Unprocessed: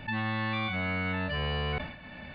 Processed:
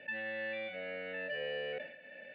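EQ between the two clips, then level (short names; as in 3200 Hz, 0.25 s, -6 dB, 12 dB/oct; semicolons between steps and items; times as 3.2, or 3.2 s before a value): vowel filter e; HPF 140 Hz 12 dB/oct; +4.5 dB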